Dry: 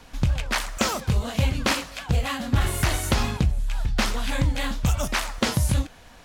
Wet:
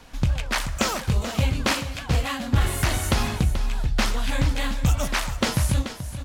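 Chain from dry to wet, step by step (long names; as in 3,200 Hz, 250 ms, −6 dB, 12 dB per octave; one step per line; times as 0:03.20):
single-tap delay 433 ms −11 dB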